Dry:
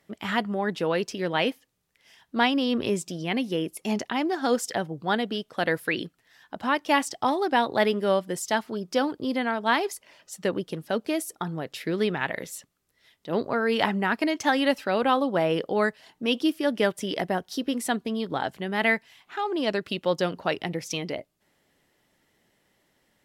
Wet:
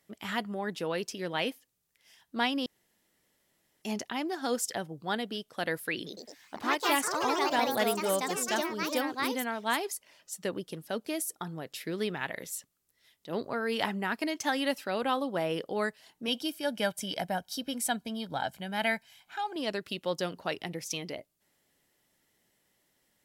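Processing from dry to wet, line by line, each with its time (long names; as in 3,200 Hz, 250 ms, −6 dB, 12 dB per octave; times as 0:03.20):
0:02.66–0:03.82: fill with room tone
0:05.96–0:10.37: delay with pitch and tempo change per echo 105 ms, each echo +3 semitones, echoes 3
0:16.28–0:19.56: comb filter 1.3 ms, depth 61%
whole clip: high-shelf EQ 5,300 Hz +11 dB; level −7.5 dB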